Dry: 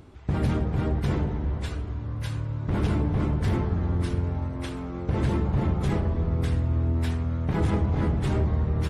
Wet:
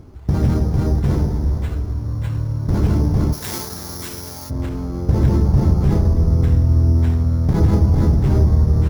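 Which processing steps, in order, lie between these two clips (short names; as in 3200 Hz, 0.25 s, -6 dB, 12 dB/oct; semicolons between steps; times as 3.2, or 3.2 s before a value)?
high shelf 3300 Hz -7.5 dB; careless resampling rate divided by 8×, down none, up hold; tilt -1.5 dB/oct, from 3.32 s +4 dB/oct, from 4.49 s -2 dB/oct; gain +3.5 dB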